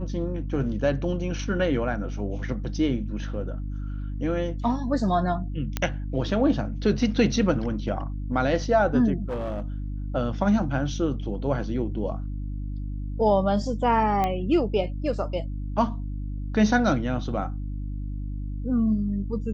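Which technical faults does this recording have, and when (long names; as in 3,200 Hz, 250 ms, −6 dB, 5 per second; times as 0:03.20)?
mains hum 50 Hz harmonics 6 −31 dBFS
0:05.77: click −11 dBFS
0:09.29–0:09.62: clipping −25.5 dBFS
0:14.24: click −13 dBFS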